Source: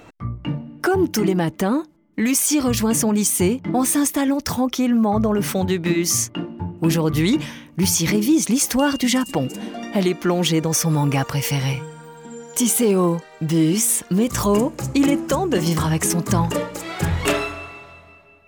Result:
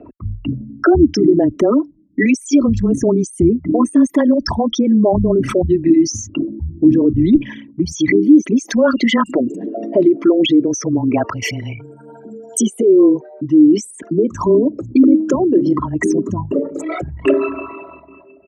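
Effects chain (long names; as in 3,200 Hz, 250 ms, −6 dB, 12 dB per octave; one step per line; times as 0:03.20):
spectral envelope exaggerated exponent 3
treble cut that deepens with the level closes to 1,900 Hz, closed at −14 dBFS
high-pass filter 66 Hz 12 dB per octave, from 0:07.35 200 Hz
comb filter 3 ms, depth 52%
frequency shifter −16 Hz
level +5.5 dB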